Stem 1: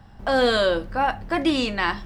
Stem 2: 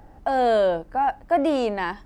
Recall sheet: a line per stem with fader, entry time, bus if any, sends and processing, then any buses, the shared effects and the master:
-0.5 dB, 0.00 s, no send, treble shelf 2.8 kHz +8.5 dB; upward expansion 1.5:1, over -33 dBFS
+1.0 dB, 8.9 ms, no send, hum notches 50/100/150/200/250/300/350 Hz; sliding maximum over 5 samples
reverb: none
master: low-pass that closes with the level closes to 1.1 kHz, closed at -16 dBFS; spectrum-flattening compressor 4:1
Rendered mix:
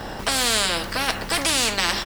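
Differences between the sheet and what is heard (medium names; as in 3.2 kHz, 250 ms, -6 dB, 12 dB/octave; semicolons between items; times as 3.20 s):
stem 1: missing upward expansion 1.5:1, over -33 dBFS; master: missing low-pass that closes with the level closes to 1.1 kHz, closed at -16 dBFS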